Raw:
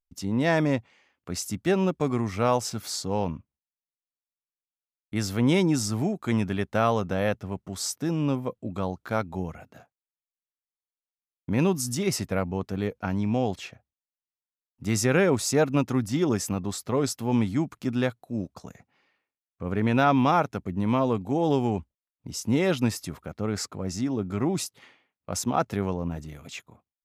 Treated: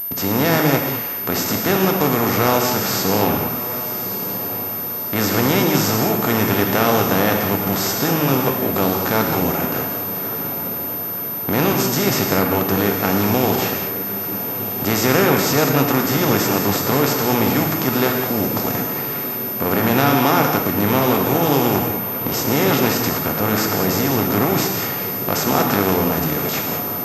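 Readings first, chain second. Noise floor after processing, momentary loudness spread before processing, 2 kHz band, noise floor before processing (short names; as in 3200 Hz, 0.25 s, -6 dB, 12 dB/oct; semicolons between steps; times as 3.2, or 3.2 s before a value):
-25 dBFS, 11 LU, +12.0 dB, under -85 dBFS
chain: per-bin compression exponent 0.4; high shelf 5100 Hz +11 dB; on a send: diffused feedback echo 1.215 s, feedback 56%, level -11.5 dB; on the sum: non-linear reverb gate 0.24 s flat, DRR 2 dB; pulse-width modulation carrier 13000 Hz; gain -1 dB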